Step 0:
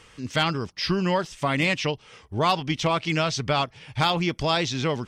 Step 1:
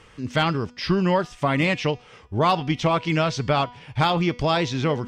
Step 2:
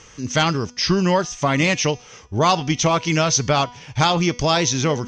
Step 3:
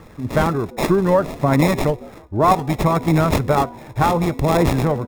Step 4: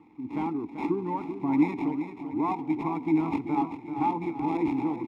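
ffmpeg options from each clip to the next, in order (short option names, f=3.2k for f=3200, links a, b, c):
-af "highshelf=f=2.8k:g=-9,bandreject=f=244.3:t=h:w=4,bandreject=f=488.6:t=h:w=4,bandreject=f=732.9:t=h:w=4,bandreject=f=977.2:t=h:w=4,bandreject=f=1.2215k:t=h:w=4,bandreject=f=1.4658k:t=h:w=4,bandreject=f=1.7101k:t=h:w=4,bandreject=f=1.9544k:t=h:w=4,bandreject=f=2.1987k:t=h:w=4,bandreject=f=2.443k:t=h:w=4,bandreject=f=2.6873k:t=h:w=4,bandreject=f=2.9316k:t=h:w=4,bandreject=f=3.1759k:t=h:w=4,bandreject=f=3.4202k:t=h:w=4,bandreject=f=3.6645k:t=h:w=4,bandreject=f=3.9088k:t=h:w=4,bandreject=f=4.1531k:t=h:w=4,bandreject=f=4.3974k:t=h:w=4,bandreject=f=4.6417k:t=h:w=4,bandreject=f=4.886k:t=h:w=4,bandreject=f=5.1303k:t=h:w=4,bandreject=f=5.3746k:t=h:w=4,bandreject=f=5.6189k:t=h:w=4,bandreject=f=5.8632k:t=h:w=4,bandreject=f=6.1075k:t=h:w=4,bandreject=f=6.3518k:t=h:w=4,bandreject=f=6.5961k:t=h:w=4,bandreject=f=6.8404k:t=h:w=4,bandreject=f=7.0847k:t=h:w=4,bandreject=f=7.329k:t=h:w=4,bandreject=f=7.5733k:t=h:w=4,bandreject=f=7.8176k:t=h:w=4,areverse,acompressor=mode=upward:threshold=-42dB:ratio=2.5,areverse,volume=3.5dB"
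-af "lowpass=f=6.2k:t=q:w=10,volume=2.5dB"
-filter_complex "[0:a]aphaser=in_gain=1:out_gain=1:delay=3.5:decay=0.36:speed=0.65:type=triangular,acrossover=split=590|1700[a][b][c];[a]asplit=4[d][e][f][g];[e]adelay=158,afreqshift=94,volume=-17.5dB[h];[f]adelay=316,afreqshift=188,volume=-26.9dB[i];[g]adelay=474,afreqshift=282,volume=-36.2dB[j];[d][h][i][j]amix=inputs=4:normalize=0[k];[c]acrusher=samples=29:mix=1:aa=0.000001[l];[k][b][l]amix=inputs=3:normalize=0,volume=1.5dB"
-filter_complex "[0:a]asplit=3[a][b][c];[a]bandpass=f=300:t=q:w=8,volume=0dB[d];[b]bandpass=f=870:t=q:w=8,volume=-6dB[e];[c]bandpass=f=2.24k:t=q:w=8,volume=-9dB[f];[d][e][f]amix=inputs=3:normalize=0,asplit=2[g][h];[h]aecho=0:1:388|776|1164|1552|1940|2328:0.335|0.184|0.101|0.0557|0.0307|0.0169[i];[g][i]amix=inputs=2:normalize=0"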